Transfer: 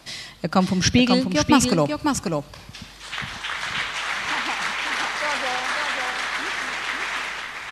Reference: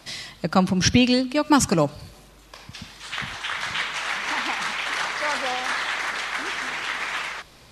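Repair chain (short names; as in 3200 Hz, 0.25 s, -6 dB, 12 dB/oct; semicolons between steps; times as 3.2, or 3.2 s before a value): inverse comb 0.542 s -5 dB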